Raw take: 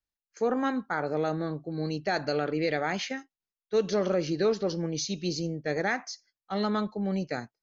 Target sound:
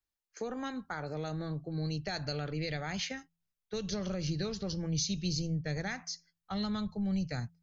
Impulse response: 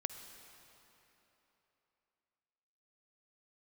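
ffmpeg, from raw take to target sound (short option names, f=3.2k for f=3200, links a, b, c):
-filter_complex "[0:a]asubboost=boost=6.5:cutoff=130,bandreject=f=84.22:t=h:w=4,bandreject=f=168.44:t=h:w=4,acrossover=split=150|3000[a][b][c];[b]acompressor=threshold=-38dB:ratio=4[d];[a][d][c]amix=inputs=3:normalize=0"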